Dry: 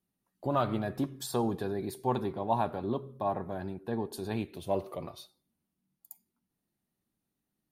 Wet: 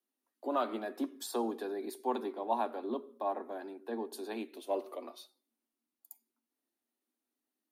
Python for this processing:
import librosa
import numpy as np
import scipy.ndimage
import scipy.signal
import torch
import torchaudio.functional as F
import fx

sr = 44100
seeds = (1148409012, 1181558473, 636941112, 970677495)

y = scipy.signal.sosfilt(scipy.signal.butter(16, 230.0, 'highpass', fs=sr, output='sos'), x)
y = y * 10.0 ** (-3.0 / 20.0)